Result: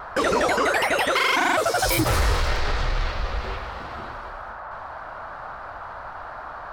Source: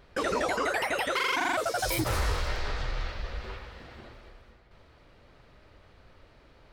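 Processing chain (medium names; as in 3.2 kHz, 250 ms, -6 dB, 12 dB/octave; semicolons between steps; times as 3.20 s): band noise 590–1500 Hz -45 dBFS; in parallel at -7.5 dB: hard clipper -30 dBFS, distortion -9 dB; on the sum: trim +5.5 dB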